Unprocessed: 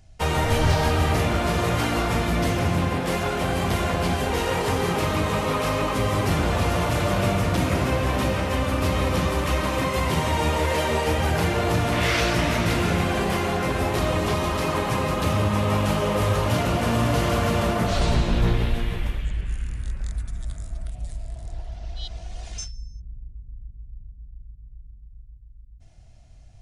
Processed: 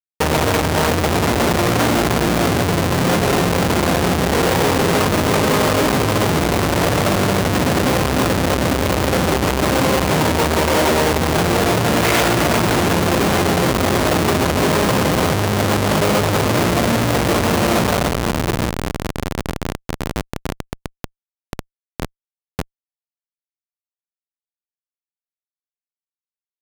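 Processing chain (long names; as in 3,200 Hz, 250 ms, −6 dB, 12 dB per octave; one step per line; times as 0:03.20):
in parallel at −7.5 dB: bit reduction 4 bits
on the sum: comparator with hysteresis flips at −23.5 dBFS
high-pass filter 180 Hz 6 dB per octave
level +7 dB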